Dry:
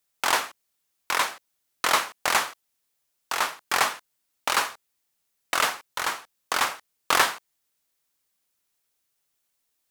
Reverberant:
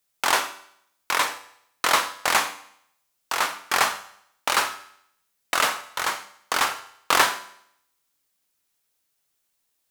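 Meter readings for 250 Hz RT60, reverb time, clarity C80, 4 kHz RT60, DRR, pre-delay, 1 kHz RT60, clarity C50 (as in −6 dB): 0.65 s, 0.70 s, 17.0 dB, 0.70 s, 10.5 dB, 10 ms, 0.70 s, 14.0 dB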